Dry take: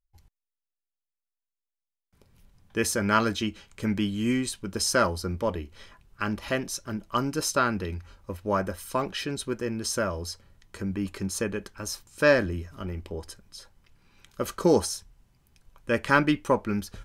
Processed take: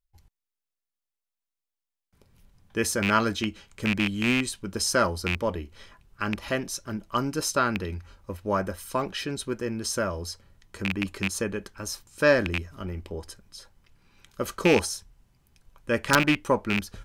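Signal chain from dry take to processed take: rattle on loud lows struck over -28 dBFS, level -13 dBFS; integer overflow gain 7 dB

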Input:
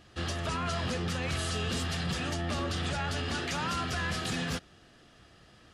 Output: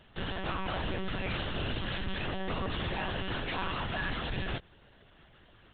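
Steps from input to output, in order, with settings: high-pass 72 Hz 6 dB/octave; band-stop 1.4 kHz, Q 11; monotone LPC vocoder at 8 kHz 190 Hz

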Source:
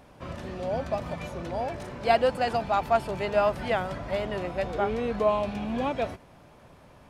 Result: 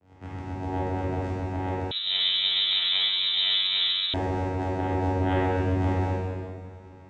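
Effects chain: tremolo saw up 7.7 Hz, depth 85%; vocoder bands 4, saw 93.1 Hz; saturation -20 dBFS, distortion -13 dB; reverberation RT60 2.0 s, pre-delay 8 ms, DRR -8 dB; 1.91–4.14 s: frequency inversion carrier 3.9 kHz

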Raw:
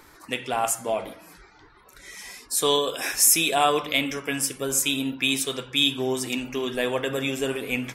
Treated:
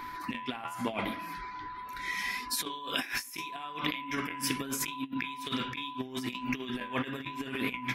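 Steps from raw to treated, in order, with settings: graphic EQ 250/500/2000/4000/8000 Hz +8/-10/+7/+4/-12 dB; inverted gate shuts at -11 dBFS, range -27 dB; whistle 1 kHz -42 dBFS; flange 0.78 Hz, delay 7.5 ms, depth 5.4 ms, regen -75%; compressor with a negative ratio -36 dBFS, ratio -0.5; trim +3 dB

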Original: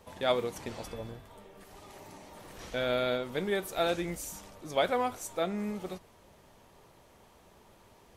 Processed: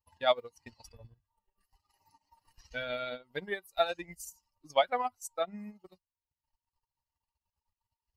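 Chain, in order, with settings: expander on every frequency bin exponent 2; transient shaper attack +6 dB, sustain -11 dB; resonant low shelf 530 Hz -7 dB, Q 1.5

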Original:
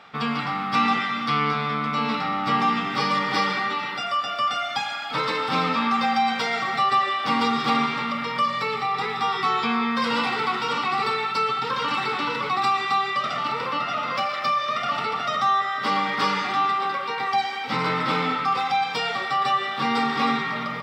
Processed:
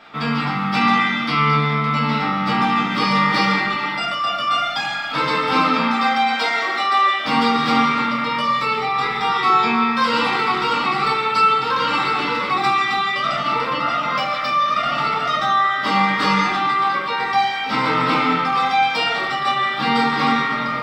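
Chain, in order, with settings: 5.57–7.16 s: high-pass 140 Hz -> 370 Hz 24 dB/octave; reverberation RT60 0.40 s, pre-delay 3 ms, DRR -3.5 dB

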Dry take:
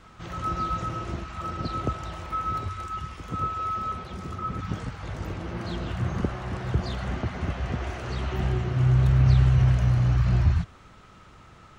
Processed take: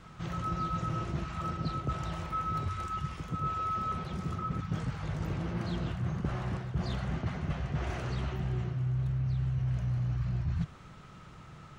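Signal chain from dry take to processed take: peaking EQ 150 Hz +10 dB 0.55 oct; reverse; compression 8:1, threshold -27 dBFS, peak gain reduction 17 dB; reverse; trim -2 dB

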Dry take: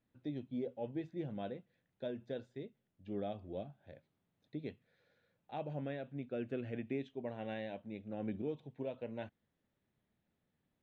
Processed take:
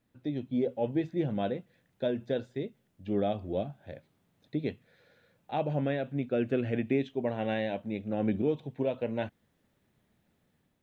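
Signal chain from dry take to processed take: level rider gain up to 4 dB; trim +7 dB

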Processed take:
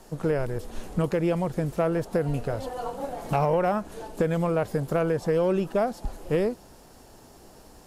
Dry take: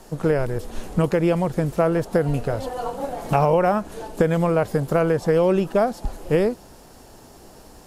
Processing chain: saturation -8 dBFS, distortion -25 dB; trim -4.5 dB

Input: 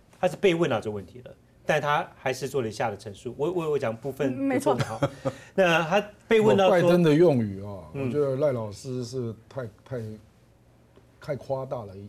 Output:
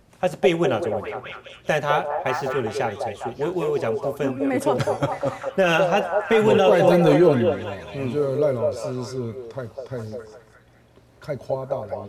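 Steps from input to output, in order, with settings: 1.99–2.55 s: median filter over 5 samples; repeats whose band climbs or falls 204 ms, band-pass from 580 Hz, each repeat 0.7 oct, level -1 dB; trim +2 dB

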